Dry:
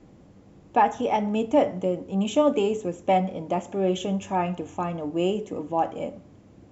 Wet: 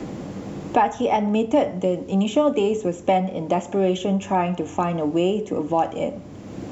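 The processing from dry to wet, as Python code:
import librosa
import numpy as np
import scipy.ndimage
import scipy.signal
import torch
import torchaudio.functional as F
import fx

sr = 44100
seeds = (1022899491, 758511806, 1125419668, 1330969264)

y = fx.band_squash(x, sr, depth_pct=70)
y = y * librosa.db_to_amplitude(3.5)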